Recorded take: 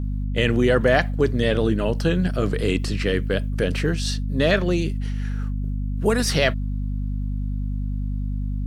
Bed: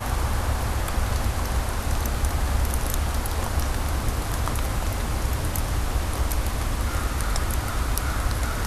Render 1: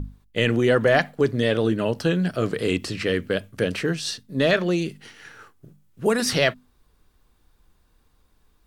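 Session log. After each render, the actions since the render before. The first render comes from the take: notches 50/100/150/200/250 Hz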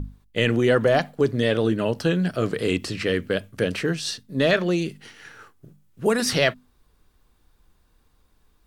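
0.82–1.31 dynamic EQ 1900 Hz, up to -7 dB, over -35 dBFS, Q 1.6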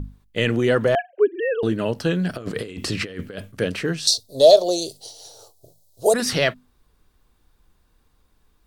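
0.95–1.63 sine-wave speech; 2.29–3.52 negative-ratio compressor -28 dBFS, ratio -0.5; 4.07–6.14 EQ curve 100 Hz 0 dB, 190 Hz -18 dB, 670 Hz +14 dB, 980 Hz -3 dB, 1700 Hz -27 dB, 2500 Hz -17 dB, 4000 Hz +13 dB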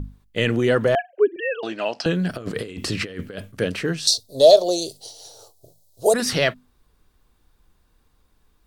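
1.36–2.06 speaker cabinet 430–7400 Hz, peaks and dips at 440 Hz -8 dB, 720 Hz +10 dB, 2500 Hz +8 dB, 5000 Hz +10 dB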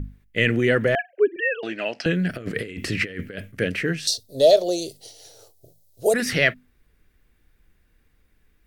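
ten-band EQ 1000 Hz -11 dB, 2000 Hz +10 dB, 4000 Hz -6 dB, 8000 Hz -4 dB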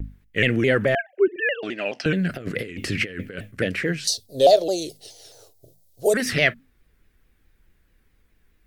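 shaped vibrato saw down 4.7 Hz, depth 160 cents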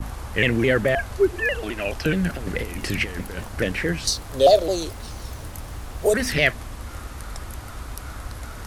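add bed -9.5 dB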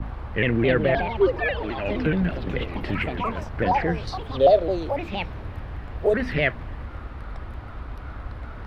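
echoes that change speed 0.366 s, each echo +5 st, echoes 3, each echo -6 dB; air absorption 400 m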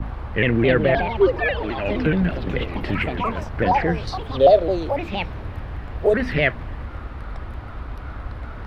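gain +3 dB

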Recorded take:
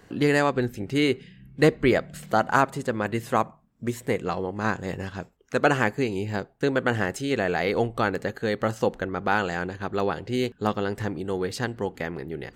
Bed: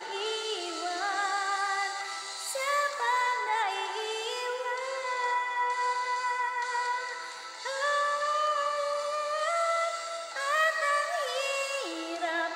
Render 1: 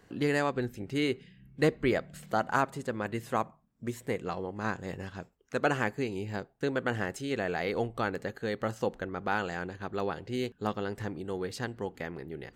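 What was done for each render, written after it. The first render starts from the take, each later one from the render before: gain -7 dB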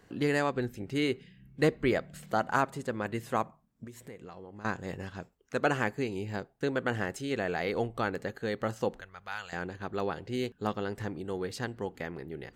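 3.84–4.65 compressor 4:1, threshold -44 dBFS; 9.01–9.53 passive tone stack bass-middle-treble 10-0-10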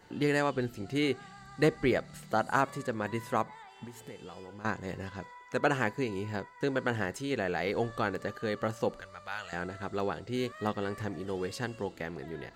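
add bed -22 dB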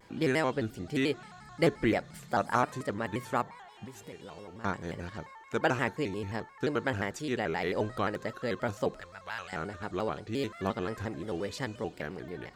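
shaped vibrato square 5.7 Hz, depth 160 cents

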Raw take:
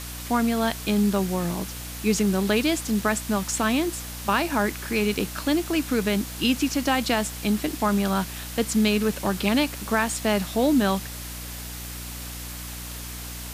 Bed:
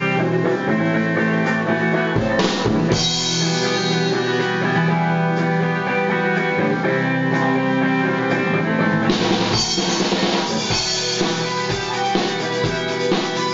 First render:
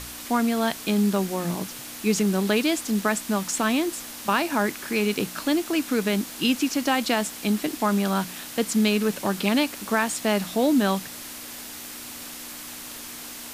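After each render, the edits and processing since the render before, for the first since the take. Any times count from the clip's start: de-hum 60 Hz, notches 3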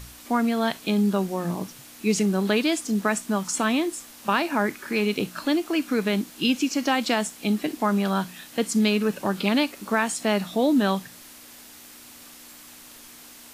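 noise print and reduce 8 dB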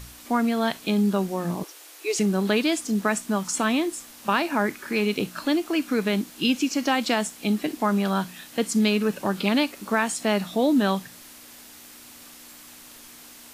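1.63–2.19 steep high-pass 320 Hz 72 dB/oct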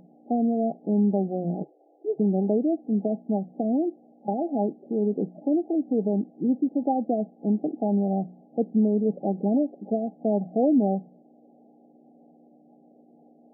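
FFT band-pass 140–830 Hz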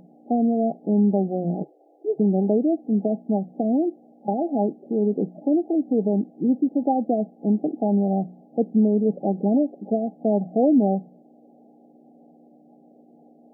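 gain +3 dB

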